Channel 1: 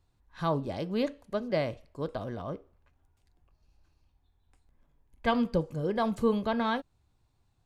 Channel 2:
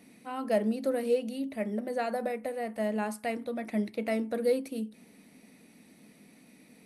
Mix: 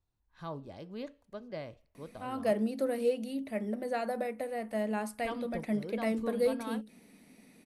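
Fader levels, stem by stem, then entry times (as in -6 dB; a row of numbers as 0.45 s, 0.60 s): -12.0 dB, -2.0 dB; 0.00 s, 1.95 s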